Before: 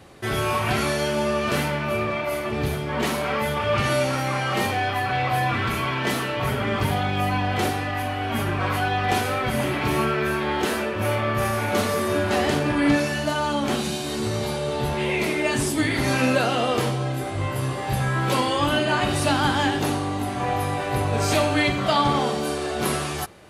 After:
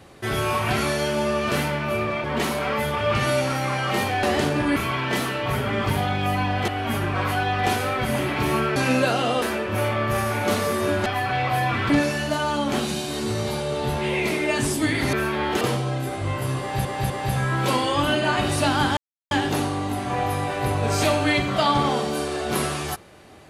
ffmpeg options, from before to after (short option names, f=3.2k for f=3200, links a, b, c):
-filter_complex "[0:a]asplit=14[a][b][c][d][e][f][g][h][i][j][k][l][m][n];[a]atrim=end=2.242[o];[b]atrim=start=2.868:end=4.862[p];[c]atrim=start=12.328:end=12.862[q];[d]atrim=start=5.698:end=7.622[r];[e]atrim=start=8.128:end=10.212[s];[f]atrim=start=16.088:end=16.752[t];[g]atrim=start=10.688:end=12.332[u];[h]atrim=start=4.858:end=5.702[v];[i]atrim=start=12.858:end=16.092[w];[j]atrim=start=10.208:end=10.692[x];[k]atrim=start=16.748:end=17.992[y];[l]atrim=start=17.738:end=17.992[z];[m]atrim=start=17.738:end=19.61,asetpts=PTS-STARTPTS,afade=t=out:st=1.868:d=0.004:c=hsin,apad=pad_dur=0.34[aa];[n]atrim=start=19.61,asetpts=PTS-STARTPTS,afade=t=in:d=0.004:c=hsin[ab];[o][p]acrossfade=d=0.004:c1=hsin:c2=hsin[ac];[ac][q]acrossfade=d=0.004:c1=hsin:c2=hsin[ad];[ad][r]acrossfade=d=0.004:c1=hsin:c2=hsin[ae];[ae][s]acrossfade=d=0.004:c1=hsin:c2=hsin[af];[af][t]acrossfade=d=0.004:c1=hsin:c2=hsin[ag];[ag][u]acrossfade=d=0.004:c1=hsin:c2=hsin[ah];[ah][v]acrossfade=d=0.004:c1=hsin:c2=hsin[ai];[ai][w]acrossfade=d=0.004:c1=hsin:c2=hsin[aj];[aj][x]acrossfade=d=0.004:c1=hsin:c2=hsin[ak];[ak][y]acrossfade=d=0.004:c1=hsin:c2=hsin[al];[al][z]acrossfade=d=0.004:c1=hsin:c2=hsin[am];[aa][ab]concat=n=2:v=0:a=1[an];[am][an]acrossfade=d=0.004:c1=hsin:c2=hsin"